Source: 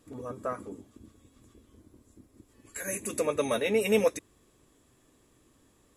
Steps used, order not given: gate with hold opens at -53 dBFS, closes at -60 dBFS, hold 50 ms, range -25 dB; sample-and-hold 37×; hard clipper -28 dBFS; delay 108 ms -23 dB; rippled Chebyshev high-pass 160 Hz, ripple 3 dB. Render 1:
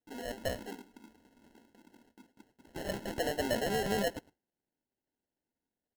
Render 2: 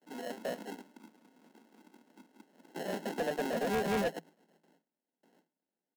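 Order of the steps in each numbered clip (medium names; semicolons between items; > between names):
hard clipper > rippled Chebyshev high-pass > gate with hold > sample-and-hold > delay; gate with hold > delay > sample-and-hold > rippled Chebyshev high-pass > hard clipper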